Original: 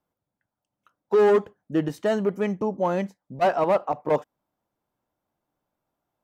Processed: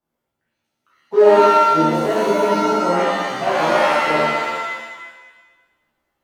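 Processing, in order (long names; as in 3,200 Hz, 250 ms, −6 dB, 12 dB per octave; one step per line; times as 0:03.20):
reverb with rising layers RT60 1.2 s, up +7 semitones, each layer −2 dB, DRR −9.5 dB
level −6 dB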